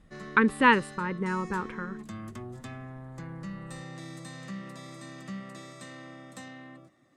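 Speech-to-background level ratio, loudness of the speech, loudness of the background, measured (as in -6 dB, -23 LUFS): 16.5 dB, -26.0 LUFS, -42.5 LUFS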